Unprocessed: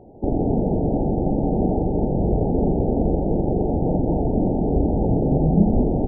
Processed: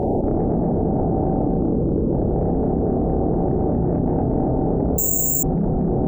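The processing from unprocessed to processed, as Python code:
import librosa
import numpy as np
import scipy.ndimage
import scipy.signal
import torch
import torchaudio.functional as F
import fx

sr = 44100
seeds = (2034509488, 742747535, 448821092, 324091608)

y = fx.cheby1_lowpass(x, sr, hz=580.0, order=8, at=(1.46, 2.11))
y = fx.peak_eq(y, sr, hz=130.0, db=5.5, octaves=1.7, at=(3.48, 4.1))
y = fx.cheby_harmonics(y, sr, harmonics=(6,), levels_db=(-28,), full_scale_db=-5.5)
y = fx.doubler(y, sr, ms=30.0, db=-4.0)
y = fx.echo_feedback(y, sr, ms=237, feedback_pct=41, wet_db=-4)
y = fx.resample_bad(y, sr, factor=6, down='none', up='zero_stuff', at=(4.98, 5.43))
y = fx.env_flatten(y, sr, amount_pct=100)
y = F.gain(torch.from_numpy(y), -15.0).numpy()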